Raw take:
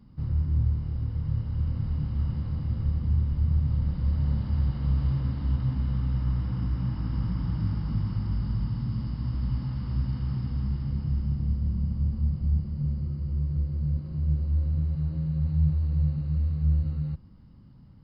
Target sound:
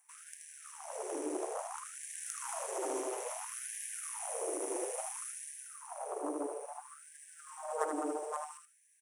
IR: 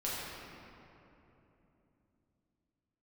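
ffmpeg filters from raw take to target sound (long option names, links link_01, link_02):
-filter_complex "[0:a]aeval=exprs='0.211*(cos(1*acos(clip(val(0)/0.211,-1,1)))-cos(1*PI/2))+0.0944*(cos(3*acos(clip(val(0)/0.211,-1,1)))-cos(3*PI/2))+0.0335*(cos(5*acos(clip(val(0)/0.211,-1,1)))-cos(5*PI/2))+0.0237*(cos(8*acos(clip(val(0)/0.211,-1,1)))-cos(8*PI/2))':channel_layout=same,acrossover=split=410|580[link_01][link_02][link_03];[link_03]aexciter=amount=10.4:drive=8.8:freq=3300[link_04];[link_01][link_02][link_04]amix=inputs=3:normalize=0,highshelf=frequency=4000:gain=-8,asplit=2[link_05][link_06];[link_06]aecho=0:1:155|310|465:0.501|0.115|0.0265[link_07];[link_05][link_07]amix=inputs=2:normalize=0,asetrate=88200,aresample=44100,afftfilt=real='re*gte(b*sr/1024,280*pow(1600/280,0.5+0.5*sin(2*PI*0.59*pts/sr)))':imag='im*gte(b*sr/1024,280*pow(1600/280,0.5+0.5*sin(2*PI*0.59*pts/sr)))':win_size=1024:overlap=0.75"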